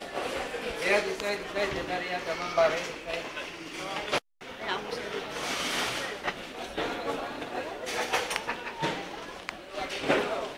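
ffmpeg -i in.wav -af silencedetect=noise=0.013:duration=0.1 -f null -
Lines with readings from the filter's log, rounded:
silence_start: 4.18
silence_end: 4.42 | silence_duration: 0.23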